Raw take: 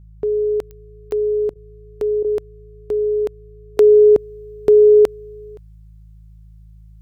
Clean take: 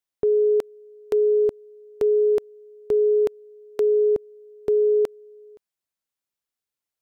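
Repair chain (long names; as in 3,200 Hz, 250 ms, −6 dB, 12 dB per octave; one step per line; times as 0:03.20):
click removal
hum removal 53.5 Hz, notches 3
repair the gap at 0:01.54/0:02.23, 14 ms
level correction −9.5 dB, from 0:03.77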